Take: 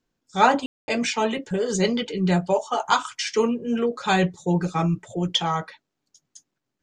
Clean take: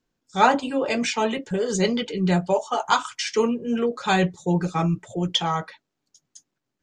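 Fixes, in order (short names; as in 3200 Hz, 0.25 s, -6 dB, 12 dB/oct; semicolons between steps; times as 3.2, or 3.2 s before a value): room tone fill 0.66–0.88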